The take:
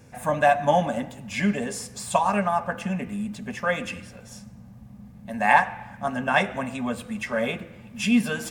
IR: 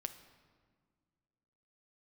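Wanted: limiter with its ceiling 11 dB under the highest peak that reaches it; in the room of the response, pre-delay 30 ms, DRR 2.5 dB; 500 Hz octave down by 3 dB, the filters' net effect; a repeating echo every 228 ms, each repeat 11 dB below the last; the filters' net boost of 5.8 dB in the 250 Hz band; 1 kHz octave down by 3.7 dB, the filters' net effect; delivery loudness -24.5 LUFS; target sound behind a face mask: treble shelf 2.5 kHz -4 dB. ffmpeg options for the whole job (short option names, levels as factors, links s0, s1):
-filter_complex "[0:a]equalizer=f=250:t=o:g=7.5,equalizer=f=500:t=o:g=-3.5,equalizer=f=1000:t=o:g=-3.5,alimiter=limit=0.158:level=0:latency=1,aecho=1:1:228|456|684:0.282|0.0789|0.0221,asplit=2[s0][s1];[1:a]atrim=start_sample=2205,adelay=30[s2];[s1][s2]afir=irnorm=-1:irlink=0,volume=0.944[s3];[s0][s3]amix=inputs=2:normalize=0,highshelf=f=2500:g=-4,volume=1.12"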